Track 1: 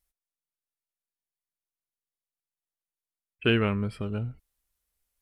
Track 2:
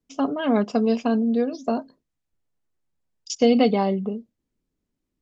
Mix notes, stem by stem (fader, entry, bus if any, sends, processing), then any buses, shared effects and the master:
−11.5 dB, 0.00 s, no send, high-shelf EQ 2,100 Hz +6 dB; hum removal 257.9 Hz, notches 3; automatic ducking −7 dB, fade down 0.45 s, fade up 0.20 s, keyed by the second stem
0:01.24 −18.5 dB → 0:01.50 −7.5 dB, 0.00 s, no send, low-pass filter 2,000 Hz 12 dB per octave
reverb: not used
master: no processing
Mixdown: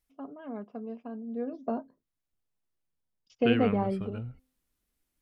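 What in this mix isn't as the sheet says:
stem 1 −11.5 dB → +0.5 dB
master: extra high-shelf EQ 3,800 Hz −10 dB

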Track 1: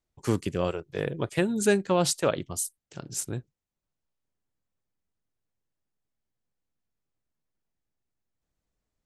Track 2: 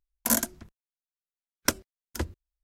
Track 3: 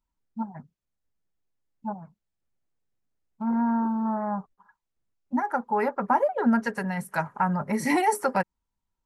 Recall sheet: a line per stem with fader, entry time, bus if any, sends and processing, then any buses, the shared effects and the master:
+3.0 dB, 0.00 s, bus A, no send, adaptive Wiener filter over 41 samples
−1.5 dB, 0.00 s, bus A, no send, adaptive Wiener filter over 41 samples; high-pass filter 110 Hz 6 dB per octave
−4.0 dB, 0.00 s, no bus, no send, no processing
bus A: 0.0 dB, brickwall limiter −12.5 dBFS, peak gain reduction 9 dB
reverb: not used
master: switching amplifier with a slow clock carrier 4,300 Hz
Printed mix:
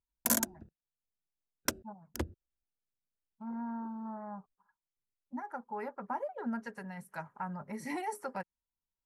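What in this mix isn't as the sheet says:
stem 1: muted
stem 3 −4.0 dB → −14.5 dB
master: missing switching amplifier with a slow clock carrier 4,300 Hz

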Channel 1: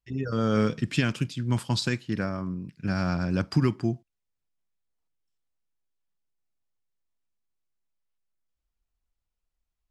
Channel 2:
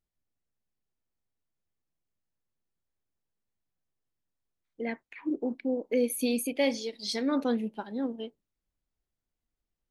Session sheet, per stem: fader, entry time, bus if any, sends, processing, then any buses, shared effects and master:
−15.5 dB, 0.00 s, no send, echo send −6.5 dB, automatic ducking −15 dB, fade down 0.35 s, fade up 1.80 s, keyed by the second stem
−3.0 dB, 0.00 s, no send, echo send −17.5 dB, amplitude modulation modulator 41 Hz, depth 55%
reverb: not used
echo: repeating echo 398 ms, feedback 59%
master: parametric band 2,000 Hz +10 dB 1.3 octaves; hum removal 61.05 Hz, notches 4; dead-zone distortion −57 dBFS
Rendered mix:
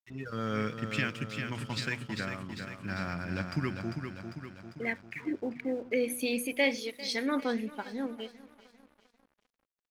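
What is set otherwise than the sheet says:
stem 1 −15.5 dB → −9.5 dB
stem 2: missing amplitude modulation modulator 41 Hz, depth 55%

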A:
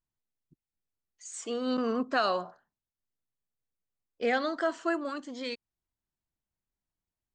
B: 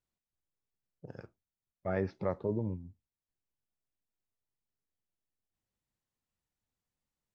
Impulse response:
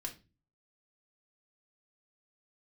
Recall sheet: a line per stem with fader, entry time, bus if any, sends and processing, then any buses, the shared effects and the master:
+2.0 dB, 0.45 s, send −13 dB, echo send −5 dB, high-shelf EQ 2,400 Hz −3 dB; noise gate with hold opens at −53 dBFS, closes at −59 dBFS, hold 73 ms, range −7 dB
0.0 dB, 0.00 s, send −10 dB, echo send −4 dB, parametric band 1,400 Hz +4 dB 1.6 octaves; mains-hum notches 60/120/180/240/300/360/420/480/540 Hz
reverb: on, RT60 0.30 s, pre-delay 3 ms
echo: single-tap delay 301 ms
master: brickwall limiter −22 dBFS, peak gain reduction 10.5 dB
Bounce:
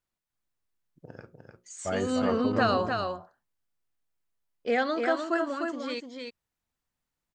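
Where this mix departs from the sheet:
stem A: send off
master: missing brickwall limiter −22 dBFS, peak gain reduction 10.5 dB

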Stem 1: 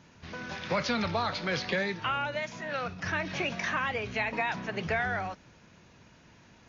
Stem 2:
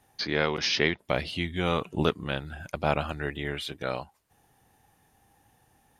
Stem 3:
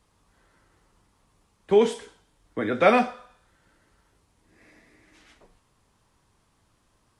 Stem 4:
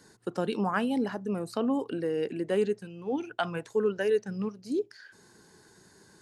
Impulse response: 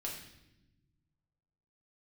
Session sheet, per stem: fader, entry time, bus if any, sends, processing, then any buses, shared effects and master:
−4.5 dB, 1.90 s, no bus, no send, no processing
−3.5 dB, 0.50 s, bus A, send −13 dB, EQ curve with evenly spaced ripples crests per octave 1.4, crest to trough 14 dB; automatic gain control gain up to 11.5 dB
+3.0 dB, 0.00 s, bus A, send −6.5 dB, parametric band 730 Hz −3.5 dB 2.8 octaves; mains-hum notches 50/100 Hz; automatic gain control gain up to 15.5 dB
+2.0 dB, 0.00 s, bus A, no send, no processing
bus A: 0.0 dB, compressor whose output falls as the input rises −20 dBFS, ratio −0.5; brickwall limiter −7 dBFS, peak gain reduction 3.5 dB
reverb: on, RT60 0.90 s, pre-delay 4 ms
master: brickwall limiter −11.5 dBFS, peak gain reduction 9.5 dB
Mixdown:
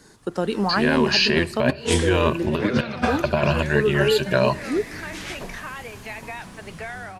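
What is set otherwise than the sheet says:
stem 3: send off
master: missing brickwall limiter −11.5 dBFS, peak gain reduction 9.5 dB

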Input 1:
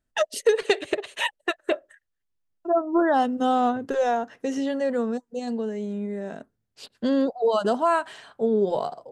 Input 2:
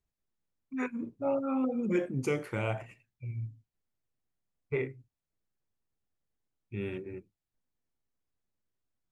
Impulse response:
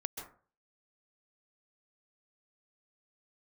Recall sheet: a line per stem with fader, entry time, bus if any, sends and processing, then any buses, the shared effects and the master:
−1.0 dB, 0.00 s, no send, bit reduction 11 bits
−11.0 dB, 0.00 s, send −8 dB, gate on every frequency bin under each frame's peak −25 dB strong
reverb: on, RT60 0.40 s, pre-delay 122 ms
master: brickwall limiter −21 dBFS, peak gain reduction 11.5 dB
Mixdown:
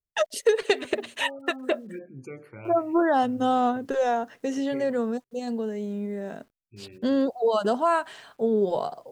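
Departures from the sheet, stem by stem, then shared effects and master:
stem 2: send −8 dB → −14.5 dB
master: missing brickwall limiter −21 dBFS, peak gain reduction 11.5 dB

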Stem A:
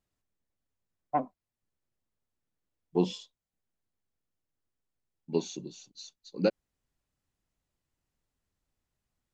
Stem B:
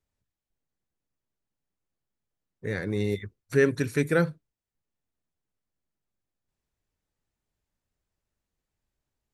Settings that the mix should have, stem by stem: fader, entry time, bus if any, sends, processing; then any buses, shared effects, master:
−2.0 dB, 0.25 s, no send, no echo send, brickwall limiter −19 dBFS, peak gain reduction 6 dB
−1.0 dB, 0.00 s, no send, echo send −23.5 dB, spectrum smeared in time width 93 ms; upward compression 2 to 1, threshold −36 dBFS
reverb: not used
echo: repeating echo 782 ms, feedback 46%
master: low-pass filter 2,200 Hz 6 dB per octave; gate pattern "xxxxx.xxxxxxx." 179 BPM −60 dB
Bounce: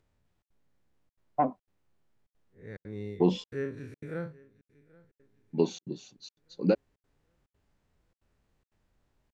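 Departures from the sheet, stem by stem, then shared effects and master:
stem A −2.0 dB → +6.0 dB
stem B −1.0 dB → −10.5 dB

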